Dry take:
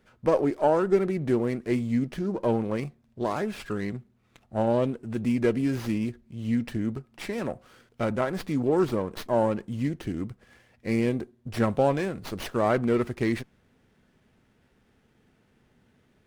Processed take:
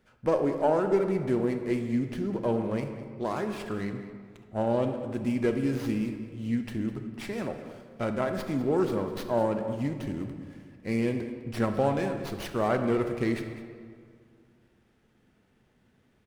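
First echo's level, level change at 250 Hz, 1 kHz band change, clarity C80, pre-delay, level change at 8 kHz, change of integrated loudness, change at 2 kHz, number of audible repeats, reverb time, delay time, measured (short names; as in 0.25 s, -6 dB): -15.0 dB, -2.0 dB, -2.0 dB, 8.0 dB, 26 ms, -2.5 dB, -2.0 dB, -2.0 dB, 1, 2.1 s, 0.204 s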